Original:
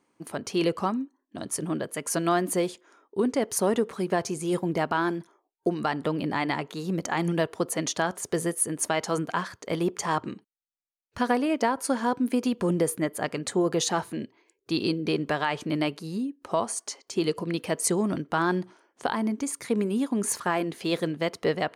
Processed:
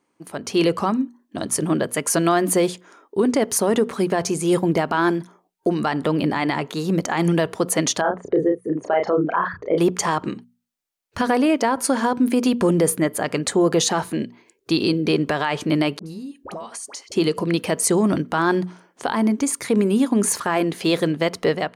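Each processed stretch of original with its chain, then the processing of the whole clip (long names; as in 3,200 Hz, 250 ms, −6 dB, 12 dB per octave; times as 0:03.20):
0:08.01–0:09.78: spectral envelope exaggerated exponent 2 + low-pass filter 3,200 Hz 24 dB per octave + double-tracking delay 33 ms −4 dB
0:15.99–0:17.12: all-pass dispersion highs, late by 70 ms, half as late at 1,100 Hz + downward compressor, threshold −40 dBFS
whole clip: mains-hum notches 60/120/180/240 Hz; automatic gain control gain up to 9.5 dB; brickwall limiter −9.5 dBFS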